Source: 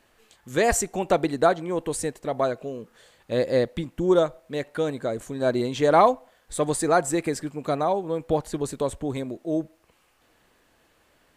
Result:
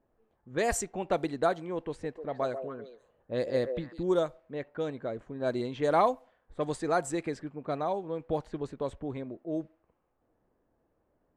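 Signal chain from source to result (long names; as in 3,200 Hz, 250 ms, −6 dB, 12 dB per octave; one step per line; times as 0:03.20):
low-pass that shuts in the quiet parts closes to 700 Hz, open at −17 dBFS
0:01.90–0:04.03: echo through a band-pass that steps 140 ms, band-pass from 510 Hz, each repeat 1.4 octaves, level −5.5 dB
level −7.5 dB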